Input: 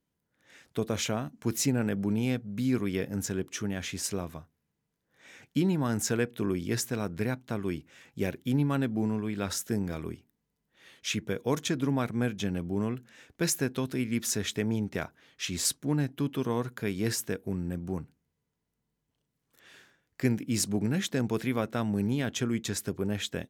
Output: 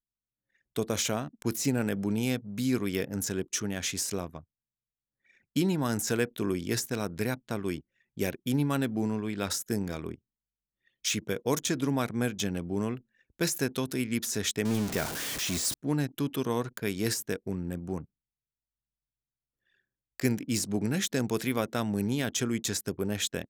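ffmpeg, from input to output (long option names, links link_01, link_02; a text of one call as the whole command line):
ffmpeg -i in.wav -filter_complex "[0:a]asettb=1/sr,asplit=3[link_01][link_02][link_03];[link_01]atrim=end=14.654[link_04];[link_02]atrim=start=14.65:end=15.74,asetpts=PTS-STARTPTS,afade=type=in:duration=0.004:curve=qsin,afade=type=out:start_time=1.086:duration=0.004:curve=qsin,aeval=exprs='val(0)+0.5*0.0266*sgn(val(0))':channel_layout=same[link_05];[link_03]atrim=start=15.736[link_06];[link_04][link_05]acrossfade=duration=0.004:curve1=hsin:curve2=qsin[link_07];[link_07][link_06]acrossfade=duration=0.004:curve1=qsin:curve2=hsin,anlmdn=0.0398,deesser=0.75,bass=frequency=250:gain=-3,treble=frequency=4000:gain=10,volume=1dB" out.wav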